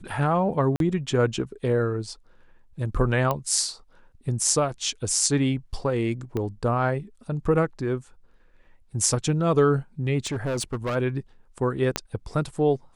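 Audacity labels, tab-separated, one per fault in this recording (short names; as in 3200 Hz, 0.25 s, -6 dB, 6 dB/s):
0.760000	0.800000	gap 42 ms
3.310000	3.310000	pop -12 dBFS
6.370000	6.370000	pop -17 dBFS
10.250000	10.960000	clipped -23.5 dBFS
11.960000	11.960000	pop -8 dBFS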